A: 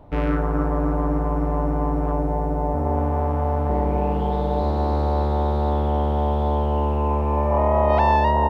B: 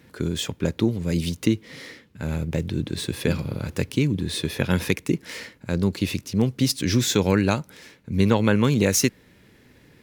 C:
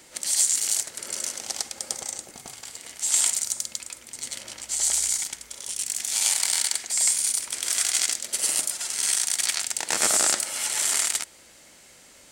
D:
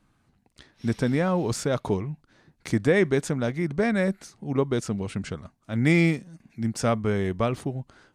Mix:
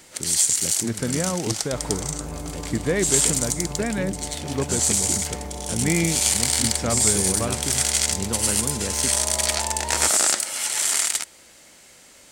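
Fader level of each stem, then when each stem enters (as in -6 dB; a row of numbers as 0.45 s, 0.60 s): -13.0 dB, -11.0 dB, +2.0 dB, -2.5 dB; 1.60 s, 0.00 s, 0.00 s, 0.00 s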